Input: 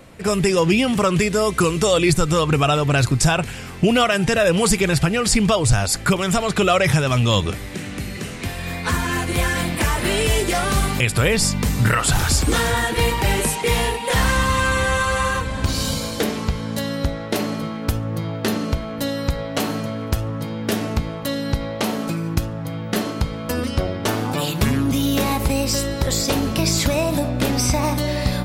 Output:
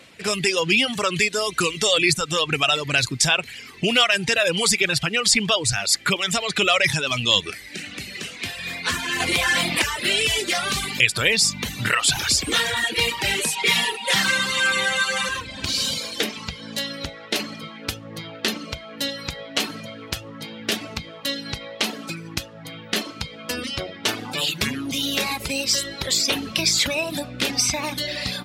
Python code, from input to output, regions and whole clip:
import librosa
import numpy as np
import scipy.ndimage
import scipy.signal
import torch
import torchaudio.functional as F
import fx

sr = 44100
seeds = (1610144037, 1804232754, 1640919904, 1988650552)

y = fx.chain(x, sr, fx.peak_eq(hz=840.0, db=6.0, octaves=0.92),
    fx.env_flatten(amount_pct=70), at=(9.2, 9.82))
y = fx.chain(y, sr, fx.highpass(hz=95.0, slope=24),
    fx.comb(ms=5.2, depth=0.7), at=(13.56, 15.29))
y = fx.dereverb_blind(y, sr, rt60_s=1.0)
y = fx.weighting(y, sr, curve='D')
y = F.gain(torch.from_numpy(y), -5.0).numpy()